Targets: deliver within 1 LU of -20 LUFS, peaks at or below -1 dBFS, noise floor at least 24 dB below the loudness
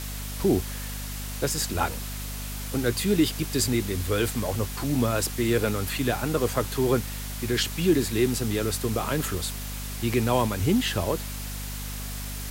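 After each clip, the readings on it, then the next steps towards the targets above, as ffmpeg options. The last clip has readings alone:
hum 50 Hz; harmonics up to 250 Hz; hum level -33 dBFS; noise floor -34 dBFS; noise floor target -51 dBFS; loudness -26.5 LUFS; peak -10.0 dBFS; loudness target -20.0 LUFS
-> -af "bandreject=f=50:t=h:w=6,bandreject=f=100:t=h:w=6,bandreject=f=150:t=h:w=6,bandreject=f=200:t=h:w=6,bandreject=f=250:t=h:w=6"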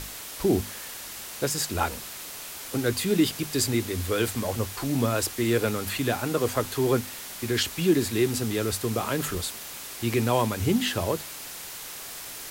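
hum none; noise floor -39 dBFS; noise floor target -52 dBFS
-> -af "afftdn=nr=13:nf=-39"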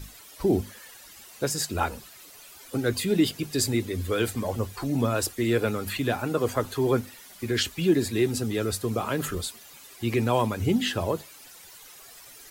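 noise floor -49 dBFS; noise floor target -51 dBFS
-> -af "afftdn=nr=6:nf=-49"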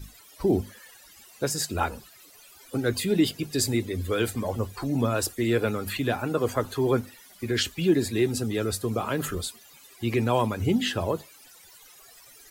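noise floor -52 dBFS; loudness -27.0 LUFS; peak -10.5 dBFS; loudness target -20.0 LUFS
-> -af "volume=7dB"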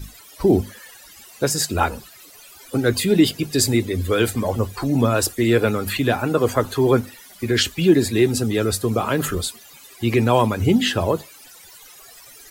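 loudness -20.0 LUFS; peak -3.5 dBFS; noise floor -45 dBFS

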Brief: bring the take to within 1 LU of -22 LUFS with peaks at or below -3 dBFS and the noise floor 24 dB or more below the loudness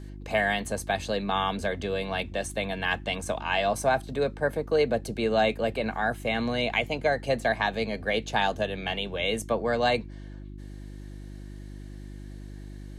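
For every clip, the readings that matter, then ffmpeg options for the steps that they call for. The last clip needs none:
hum 50 Hz; harmonics up to 350 Hz; hum level -39 dBFS; loudness -27.5 LUFS; peak -11.5 dBFS; loudness target -22.0 LUFS
-> -af "bandreject=f=50:t=h:w=4,bandreject=f=100:t=h:w=4,bandreject=f=150:t=h:w=4,bandreject=f=200:t=h:w=4,bandreject=f=250:t=h:w=4,bandreject=f=300:t=h:w=4,bandreject=f=350:t=h:w=4"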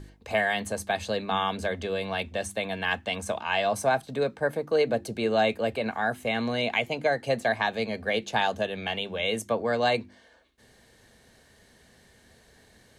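hum none; loudness -28.0 LUFS; peak -12.0 dBFS; loudness target -22.0 LUFS
-> -af "volume=6dB"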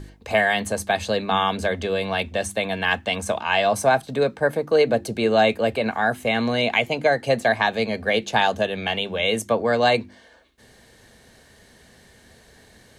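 loudness -22.0 LUFS; peak -6.0 dBFS; noise floor -53 dBFS

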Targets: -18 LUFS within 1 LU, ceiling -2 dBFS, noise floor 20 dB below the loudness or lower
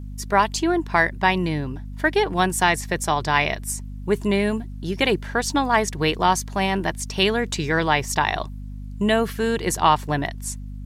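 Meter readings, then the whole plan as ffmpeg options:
hum 50 Hz; harmonics up to 250 Hz; hum level -31 dBFS; loudness -22.0 LUFS; peak -4.0 dBFS; loudness target -18.0 LUFS
-> -af "bandreject=f=50:t=h:w=6,bandreject=f=100:t=h:w=6,bandreject=f=150:t=h:w=6,bandreject=f=200:t=h:w=6,bandreject=f=250:t=h:w=6"
-af "volume=4dB,alimiter=limit=-2dB:level=0:latency=1"

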